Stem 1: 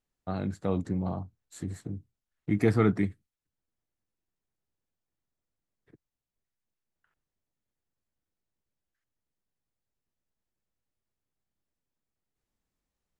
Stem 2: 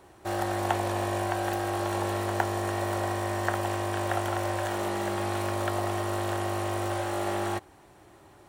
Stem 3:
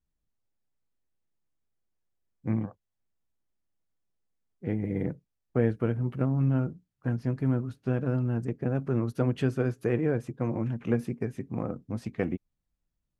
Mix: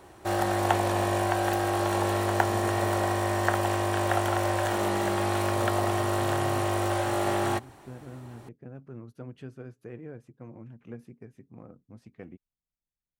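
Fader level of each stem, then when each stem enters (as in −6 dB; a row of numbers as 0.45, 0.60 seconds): −17.5, +3.0, −15.5 decibels; 0.00, 0.00, 0.00 seconds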